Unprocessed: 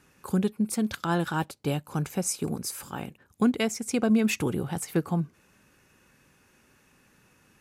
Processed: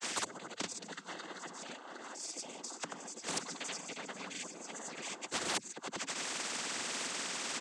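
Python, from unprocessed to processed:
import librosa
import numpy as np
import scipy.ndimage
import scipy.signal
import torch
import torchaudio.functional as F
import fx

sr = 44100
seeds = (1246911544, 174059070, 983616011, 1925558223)

y = fx.high_shelf(x, sr, hz=5400.0, db=11.0)
y = fx.notch(y, sr, hz=420.0, q=14.0)
y = fx.echo_multitap(y, sr, ms=(104, 208, 416, 750, 803), db=(-14.5, -18.5, -16.5, -7.5, -6.0))
y = fx.gate_flip(y, sr, shuts_db=-22.0, range_db=-42)
y = fx.tremolo_random(y, sr, seeds[0], hz=3.5, depth_pct=55)
y = scipy.signal.sosfilt(scipy.signal.cheby1(6, 3, 230.0, 'highpass', fs=sr, output='sos'), y)
y = fx.quant_float(y, sr, bits=2)
y = fx.granulator(y, sr, seeds[1], grain_ms=100.0, per_s=20.0, spray_ms=100.0, spread_st=0)
y = fx.noise_vocoder(y, sr, seeds[2], bands=16)
y = fx.spectral_comp(y, sr, ratio=4.0)
y = y * 10.0 ** (13.0 / 20.0)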